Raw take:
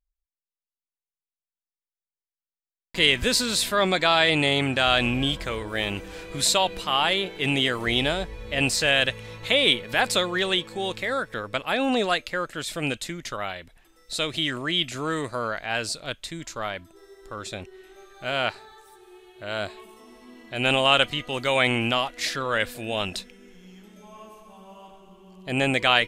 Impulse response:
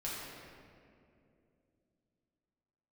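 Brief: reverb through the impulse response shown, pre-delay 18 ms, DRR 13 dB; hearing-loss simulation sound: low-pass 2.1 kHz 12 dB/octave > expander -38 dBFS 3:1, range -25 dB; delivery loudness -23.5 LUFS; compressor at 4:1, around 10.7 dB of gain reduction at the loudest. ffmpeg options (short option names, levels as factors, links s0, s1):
-filter_complex "[0:a]acompressor=threshold=0.0447:ratio=4,asplit=2[s0][s1];[1:a]atrim=start_sample=2205,adelay=18[s2];[s1][s2]afir=irnorm=-1:irlink=0,volume=0.168[s3];[s0][s3]amix=inputs=2:normalize=0,lowpass=2100,agate=range=0.0562:threshold=0.0126:ratio=3,volume=2.99"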